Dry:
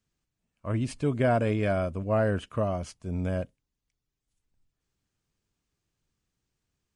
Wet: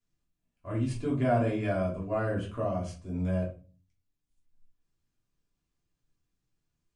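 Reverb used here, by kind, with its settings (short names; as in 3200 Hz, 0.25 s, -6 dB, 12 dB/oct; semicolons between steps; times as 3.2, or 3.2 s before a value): shoebox room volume 190 m³, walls furnished, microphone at 3.1 m; gain -10 dB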